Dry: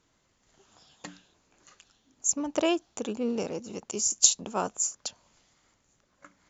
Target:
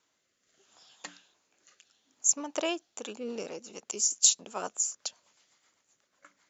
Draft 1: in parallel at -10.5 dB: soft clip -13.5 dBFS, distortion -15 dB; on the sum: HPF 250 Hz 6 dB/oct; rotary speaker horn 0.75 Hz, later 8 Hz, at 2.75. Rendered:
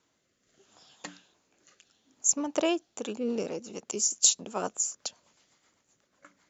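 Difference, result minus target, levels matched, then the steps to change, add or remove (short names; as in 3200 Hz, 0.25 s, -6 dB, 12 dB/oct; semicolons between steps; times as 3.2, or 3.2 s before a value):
250 Hz band +7.0 dB
change: HPF 850 Hz 6 dB/oct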